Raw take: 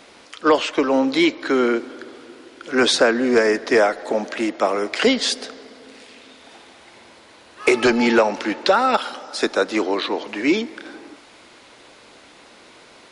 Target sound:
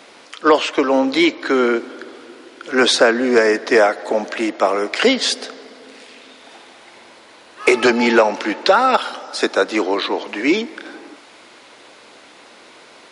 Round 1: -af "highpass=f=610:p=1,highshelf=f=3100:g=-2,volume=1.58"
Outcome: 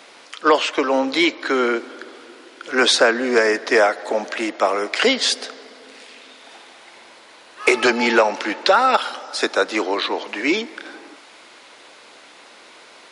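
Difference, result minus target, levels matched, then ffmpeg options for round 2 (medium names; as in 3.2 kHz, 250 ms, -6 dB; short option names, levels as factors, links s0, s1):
250 Hz band -2.5 dB
-af "highpass=f=260:p=1,highshelf=f=3100:g=-2,volume=1.58"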